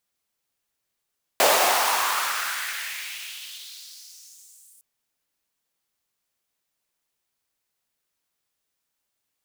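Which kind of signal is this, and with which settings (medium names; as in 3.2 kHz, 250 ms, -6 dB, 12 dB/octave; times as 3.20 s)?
swept filtered noise pink, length 3.41 s highpass, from 580 Hz, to 9.4 kHz, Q 2.6, exponential, gain ramp -34 dB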